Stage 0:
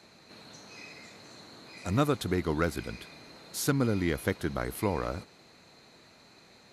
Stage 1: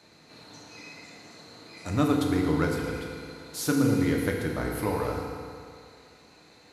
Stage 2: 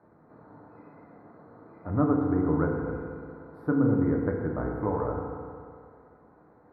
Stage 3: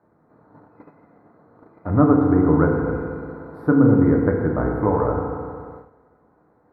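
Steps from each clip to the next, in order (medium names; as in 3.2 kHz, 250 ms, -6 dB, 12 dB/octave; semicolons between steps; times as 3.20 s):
FDN reverb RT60 2.3 s, low-frequency decay 0.9×, high-frequency decay 0.75×, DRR -0.5 dB; trim -1.5 dB
inverse Chebyshev low-pass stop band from 2.7 kHz, stop band 40 dB
gate -48 dBFS, range -11 dB; trim +9 dB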